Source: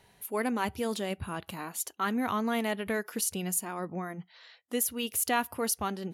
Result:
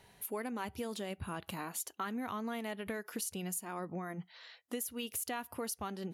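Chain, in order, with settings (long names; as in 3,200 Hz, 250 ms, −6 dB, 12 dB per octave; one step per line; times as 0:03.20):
downward compressor, threshold −36 dBFS, peak gain reduction 12.5 dB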